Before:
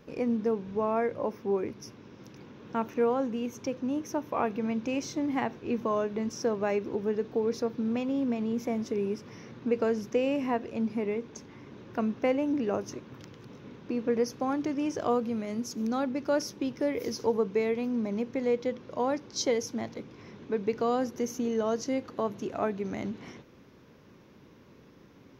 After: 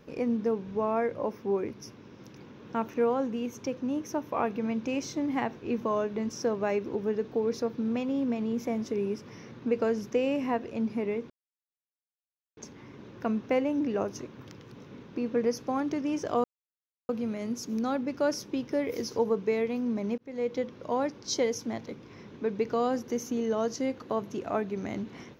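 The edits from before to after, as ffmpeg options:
ffmpeg -i in.wav -filter_complex "[0:a]asplit=4[link_01][link_02][link_03][link_04];[link_01]atrim=end=11.3,asetpts=PTS-STARTPTS,afade=type=out:start_time=11.296:duration=0.004:curve=hsin,apad=pad_dur=1.27[link_05];[link_02]atrim=start=11.3:end=15.17,asetpts=PTS-STARTPTS,afade=type=in:duration=0.004:curve=hsin,afade=type=out:start_time=3.866:duration=0.004:curve=hsin,apad=pad_dur=0.65[link_06];[link_03]atrim=start=15.17:end=18.26,asetpts=PTS-STARTPTS,afade=type=in:duration=0.004:curve=hsin,afade=type=out:start_time=3.086:duration=0.004:curve=hsin[link_07];[link_04]atrim=start=18.26,asetpts=PTS-STARTPTS,afade=type=in:duration=0.38[link_08];[link_05][link_06][link_07][link_08]concat=n=4:v=0:a=1" out.wav

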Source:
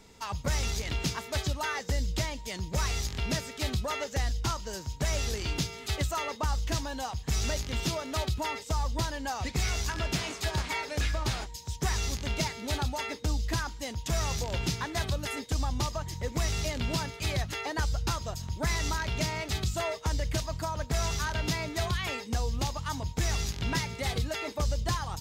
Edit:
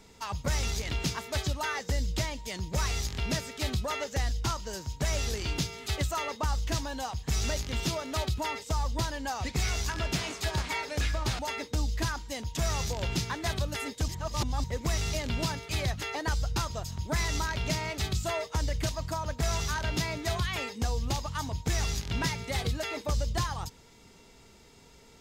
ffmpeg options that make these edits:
ffmpeg -i in.wav -filter_complex "[0:a]asplit=4[link_01][link_02][link_03][link_04];[link_01]atrim=end=11.392[link_05];[link_02]atrim=start=12.898:end=15.592[link_06];[link_03]atrim=start=15.588:end=16.152,asetpts=PTS-STARTPTS,areverse[link_07];[link_04]atrim=start=16.148[link_08];[link_05][link_06]acrossfade=duration=0.004:curve1=hsin:curve2=hsin[link_09];[link_09][link_07]acrossfade=duration=0.004:curve1=hsin:curve2=hsin[link_10];[link_10][link_08]acrossfade=duration=0.004:curve1=hsin:curve2=hsin" out.wav

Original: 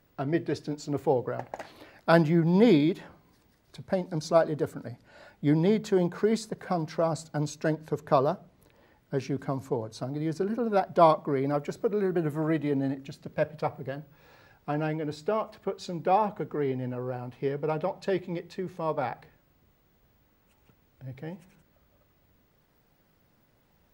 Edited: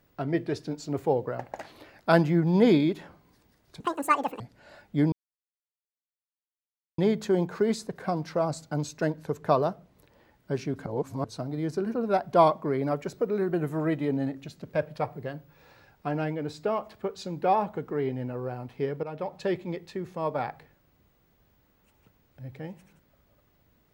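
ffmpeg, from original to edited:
ffmpeg -i in.wav -filter_complex "[0:a]asplit=7[link_01][link_02][link_03][link_04][link_05][link_06][link_07];[link_01]atrim=end=3.804[link_08];[link_02]atrim=start=3.8:end=4.89,asetpts=PTS-STARTPTS,asetrate=79821,aresample=44100,atrim=end_sample=26557,asetpts=PTS-STARTPTS[link_09];[link_03]atrim=start=4.886:end=5.61,asetpts=PTS-STARTPTS,afade=type=out:start_time=0.72:duration=0.004:curve=hsin,apad=pad_dur=1.86[link_10];[link_04]atrim=start=5.61:end=9.492,asetpts=PTS-STARTPTS,afade=type=in:duration=0.004:curve=hsin[link_11];[link_05]atrim=start=9.488:end=9.872,asetpts=PTS-STARTPTS,areverse[link_12];[link_06]atrim=start=9.868:end=17.66,asetpts=PTS-STARTPTS,afade=type=out:start_time=7.788:duration=0.004:curve=hsin:silence=0.237137[link_13];[link_07]atrim=start=17.66,asetpts=PTS-STARTPTS,afade=type=in:duration=0.34:silence=0.237137[link_14];[link_08][link_09]acrossfade=duration=0.004:curve1=hsin:curve2=hsin[link_15];[link_10][link_11]concat=n=2:v=0:a=1[link_16];[link_15][link_16]acrossfade=duration=0.004:curve1=hsin:curve2=hsin[link_17];[link_17][link_12]acrossfade=duration=0.004:curve1=hsin:curve2=hsin[link_18];[link_13][link_14]concat=n=2:v=0:a=1[link_19];[link_18][link_19]acrossfade=duration=0.004:curve1=hsin:curve2=hsin" out.wav

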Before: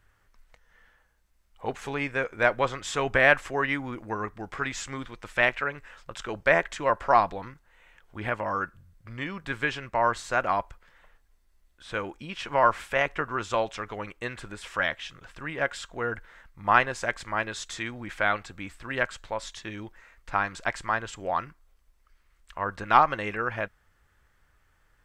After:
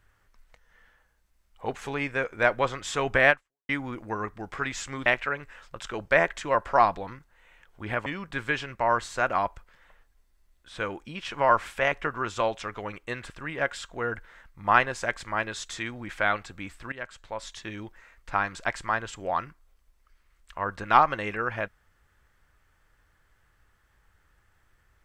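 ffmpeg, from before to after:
ffmpeg -i in.wav -filter_complex "[0:a]asplit=6[link_01][link_02][link_03][link_04][link_05][link_06];[link_01]atrim=end=3.69,asetpts=PTS-STARTPTS,afade=type=out:start_time=3.3:duration=0.39:curve=exp[link_07];[link_02]atrim=start=3.69:end=5.062,asetpts=PTS-STARTPTS,afade=type=in:duration=0.004:curve=hsin[link_08];[link_03]atrim=start=5.408:end=8.412[link_09];[link_04]atrim=start=9.198:end=14.442[link_10];[link_05]atrim=start=15.298:end=18.92,asetpts=PTS-STARTPTS,afade=type=out:start_time=3.618:duration=0.004:curve=hsin:silence=0.177828[link_11];[link_06]atrim=start=18.92,asetpts=PTS-STARTPTS,afade=type=in:duration=0.69:silence=0.177828[link_12];[link_07][link_08]concat=n=2:v=0:a=1[link_13];[link_13][link_09]acrossfade=duration=0.004:curve1=hsin:curve2=hsin[link_14];[link_14][link_10]acrossfade=duration=0.004:curve1=hsin:curve2=hsin[link_15];[link_11][link_12]concat=n=2:v=0:a=1[link_16];[link_15][link_16]acrossfade=duration=0.004:curve1=hsin:curve2=hsin" out.wav

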